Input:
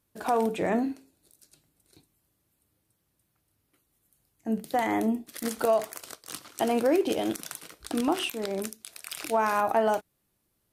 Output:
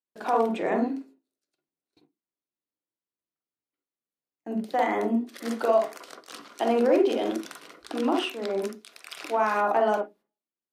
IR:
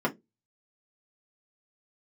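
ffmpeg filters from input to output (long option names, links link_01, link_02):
-filter_complex "[0:a]acrossover=split=250 5900:gain=0.141 1 0.224[link_01][link_02][link_03];[link_01][link_02][link_03]amix=inputs=3:normalize=0,agate=range=-23dB:threshold=-59dB:ratio=16:detection=peak,asplit=2[link_04][link_05];[1:a]atrim=start_sample=2205,lowpass=3100,adelay=44[link_06];[link_05][link_06]afir=irnorm=-1:irlink=0,volume=-13dB[link_07];[link_04][link_07]amix=inputs=2:normalize=0"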